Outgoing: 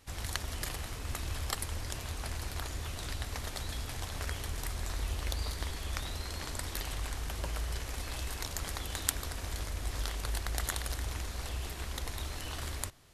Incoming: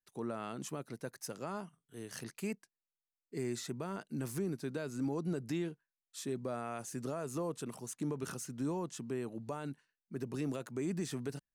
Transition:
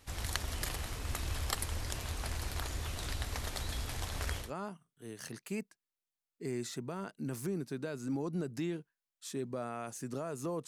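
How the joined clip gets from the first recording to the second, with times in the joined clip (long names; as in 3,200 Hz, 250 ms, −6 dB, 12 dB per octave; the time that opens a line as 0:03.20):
outgoing
0:04.44: continue with incoming from 0:01.36, crossfade 0.16 s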